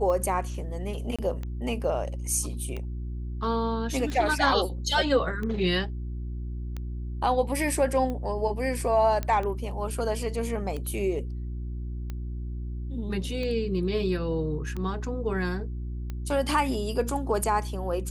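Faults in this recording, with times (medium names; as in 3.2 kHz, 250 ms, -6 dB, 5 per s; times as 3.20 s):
hum 60 Hz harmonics 6 -33 dBFS
tick 45 rpm -22 dBFS
1.16–1.19 s: dropout 26 ms
9.23 s: pop -16 dBFS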